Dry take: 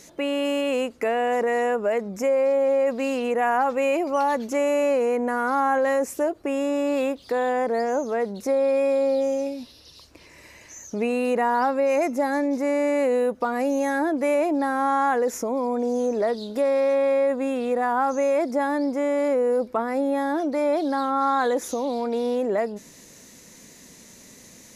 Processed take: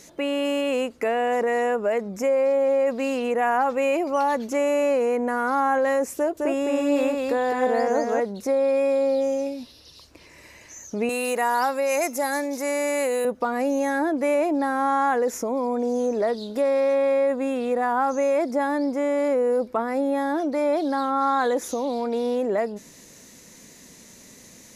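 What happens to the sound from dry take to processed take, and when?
0:06.16–0:08.20: single-tap delay 210 ms −3 dB
0:11.09–0:13.25: RIAA equalisation recording

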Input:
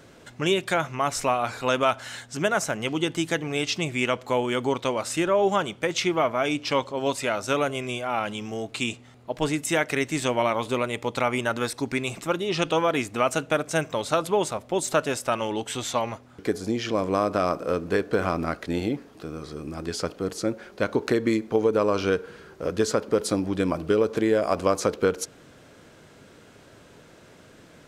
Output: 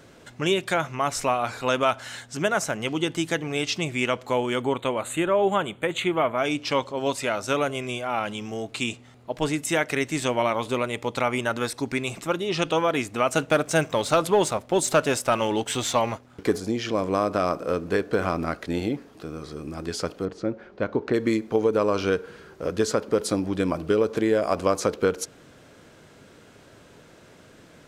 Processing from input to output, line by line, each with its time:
0:04.62–0:06.38: Butterworth band-reject 5,300 Hz, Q 1.6
0:13.35–0:16.60: leveller curve on the samples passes 1
0:20.25–0:21.14: head-to-tape spacing loss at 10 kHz 25 dB

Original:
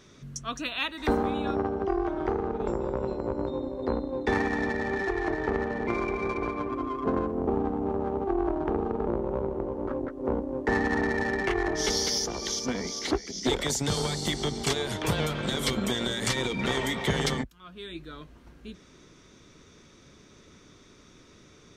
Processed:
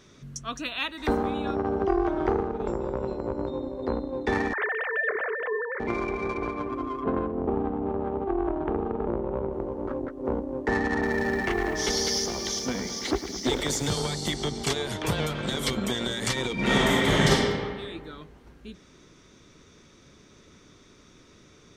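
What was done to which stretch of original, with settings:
0:01.67–0:02.43: clip gain +3.5 dB
0:04.53–0:05.80: three sine waves on the formant tracks
0:07.02–0:09.53: low-pass filter 3,700 Hz 24 dB per octave
0:10.92–0:13.94: feedback echo at a low word length 107 ms, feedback 80%, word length 8 bits, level −11.5 dB
0:16.53–0:17.31: thrown reverb, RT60 1.7 s, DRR −6.5 dB

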